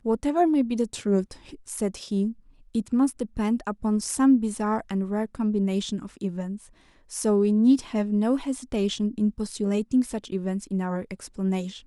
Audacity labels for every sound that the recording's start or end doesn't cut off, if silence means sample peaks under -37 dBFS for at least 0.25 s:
2.750000	6.640000	sound